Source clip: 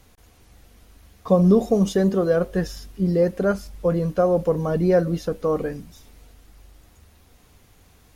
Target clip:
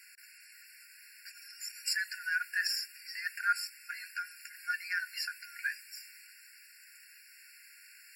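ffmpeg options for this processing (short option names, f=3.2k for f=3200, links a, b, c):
-af "highpass=f=110:w=0.5412,highpass=f=110:w=1.3066,alimiter=level_in=12.5dB:limit=-1dB:release=50:level=0:latency=1,afftfilt=real='re*eq(mod(floor(b*sr/1024/1400),2),1)':imag='im*eq(mod(floor(b*sr/1024/1400),2),1)':win_size=1024:overlap=0.75,volume=-4.5dB"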